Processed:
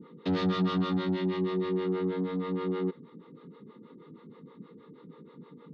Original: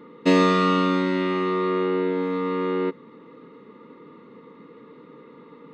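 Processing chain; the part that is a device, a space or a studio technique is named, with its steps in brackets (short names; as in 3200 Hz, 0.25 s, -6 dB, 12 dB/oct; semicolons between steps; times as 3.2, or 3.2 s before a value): guitar amplifier with harmonic tremolo (harmonic tremolo 6.3 Hz, depth 100%, crossover 410 Hz; soft clip -25.5 dBFS, distortion -9 dB; speaker cabinet 79–3900 Hz, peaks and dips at 160 Hz +4 dB, 290 Hz -6 dB, 450 Hz -3 dB, 790 Hz +5 dB, 1600 Hz +3 dB, 2700 Hz -8 dB); 1.14–1.85 notch 1300 Hz, Q 5.1; band shelf 1100 Hz -10.5 dB 2.4 oct; gain +5 dB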